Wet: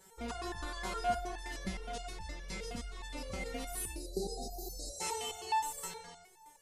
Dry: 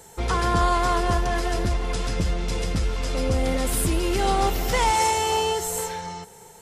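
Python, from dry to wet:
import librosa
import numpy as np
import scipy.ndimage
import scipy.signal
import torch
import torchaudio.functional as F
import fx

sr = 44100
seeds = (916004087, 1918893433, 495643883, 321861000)

y = fx.spec_erase(x, sr, start_s=3.92, length_s=1.09, low_hz=790.0, high_hz=3700.0)
y = fx.resonator_held(y, sr, hz=9.6, low_hz=190.0, high_hz=890.0)
y = y * librosa.db_to_amplitude(2.0)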